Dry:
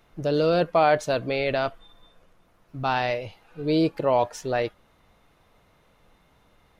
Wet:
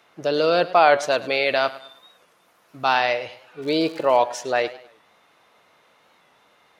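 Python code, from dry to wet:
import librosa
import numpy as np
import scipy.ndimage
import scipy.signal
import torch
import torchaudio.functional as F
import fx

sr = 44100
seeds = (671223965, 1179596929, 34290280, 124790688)

y = fx.high_shelf(x, sr, hz=7600.0, db=11.0, at=(1.18, 2.97))
y = fx.echo_feedback(y, sr, ms=105, feedback_pct=38, wet_db=-17)
y = fx.dmg_crackle(y, sr, seeds[0], per_s=180.0, level_db=-37.0, at=(3.62, 4.17), fade=0.02)
y = fx.weighting(y, sr, curve='A')
y = fx.record_warp(y, sr, rpm=45.0, depth_cents=100.0)
y = y * 10.0 ** (5.5 / 20.0)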